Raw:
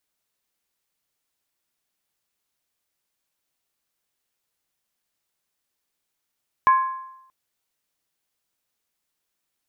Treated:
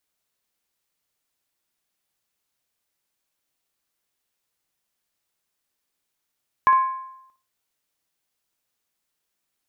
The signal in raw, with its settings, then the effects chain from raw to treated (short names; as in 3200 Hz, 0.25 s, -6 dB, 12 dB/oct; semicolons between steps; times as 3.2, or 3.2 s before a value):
skin hit, lowest mode 1050 Hz, decay 0.85 s, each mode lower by 12 dB, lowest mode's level -10.5 dB
flutter echo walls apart 10.1 m, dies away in 0.32 s